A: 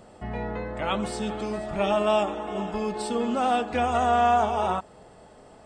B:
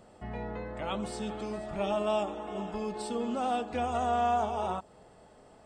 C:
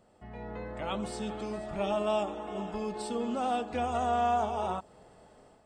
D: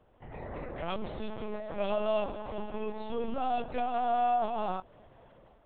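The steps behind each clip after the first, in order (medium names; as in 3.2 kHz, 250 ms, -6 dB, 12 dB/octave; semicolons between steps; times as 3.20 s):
dynamic bell 1.8 kHz, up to -5 dB, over -39 dBFS, Q 1.1; trim -6 dB
level rider gain up to 8 dB; trim -8 dB
LPC vocoder at 8 kHz pitch kept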